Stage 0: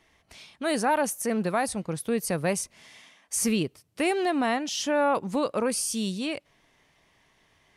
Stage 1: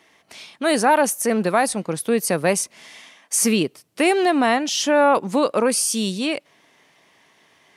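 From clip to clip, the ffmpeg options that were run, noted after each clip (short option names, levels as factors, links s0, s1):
-af "highpass=200,volume=2.51"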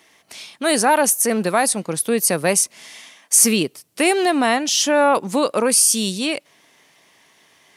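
-af "highshelf=f=4600:g=9"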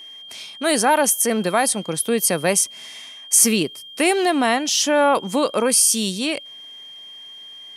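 -af "aeval=exprs='val(0)+0.0158*sin(2*PI*3200*n/s)':c=same,volume=0.891"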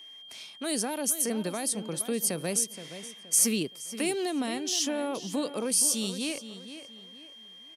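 -filter_complex "[0:a]acrossover=split=460|3000[s0][s1][s2];[s1]acompressor=threshold=0.0282:ratio=6[s3];[s0][s3][s2]amix=inputs=3:normalize=0,asplit=2[s4][s5];[s5]adelay=472,lowpass=f=4100:p=1,volume=0.266,asplit=2[s6][s7];[s7]adelay=472,lowpass=f=4100:p=1,volume=0.35,asplit=2[s8][s9];[s9]adelay=472,lowpass=f=4100:p=1,volume=0.35,asplit=2[s10][s11];[s11]adelay=472,lowpass=f=4100:p=1,volume=0.35[s12];[s4][s6][s8][s10][s12]amix=inputs=5:normalize=0,volume=0.376"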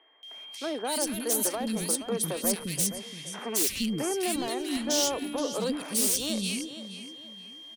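-filter_complex "[0:a]aeval=exprs='0.0631*(abs(mod(val(0)/0.0631+3,4)-2)-1)':c=same,acrossover=split=300|1900[s0][s1][s2];[s2]adelay=230[s3];[s0]adelay=350[s4];[s4][s1][s3]amix=inputs=3:normalize=0,volume=1.5"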